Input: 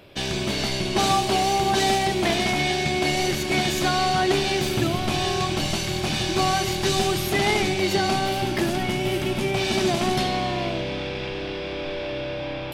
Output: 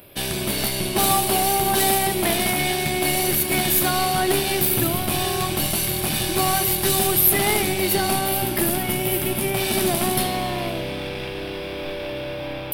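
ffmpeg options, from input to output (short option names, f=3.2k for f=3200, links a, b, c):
-af "aeval=exprs='0.355*(cos(1*acos(clip(val(0)/0.355,-1,1)))-cos(1*PI/2))+0.0178*(cos(6*acos(clip(val(0)/0.355,-1,1)))-cos(6*PI/2))':c=same,aexciter=amount=12.7:drive=4.3:freq=9.4k"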